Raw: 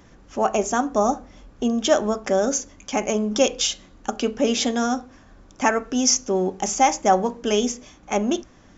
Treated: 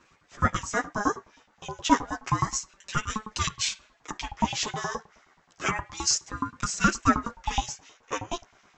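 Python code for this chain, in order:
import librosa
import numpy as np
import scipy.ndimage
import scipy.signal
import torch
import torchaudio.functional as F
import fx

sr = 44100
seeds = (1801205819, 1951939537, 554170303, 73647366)

y = fx.chorus_voices(x, sr, voices=2, hz=0.29, base_ms=10, depth_ms=4.9, mix_pct=50)
y = fx.filter_lfo_highpass(y, sr, shape='saw_up', hz=9.5, low_hz=420.0, high_hz=2400.0, q=1.7)
y = fx.ring_lfo(y, sr, carrier_hz=480.0, swing_pct=35, hz=0.31)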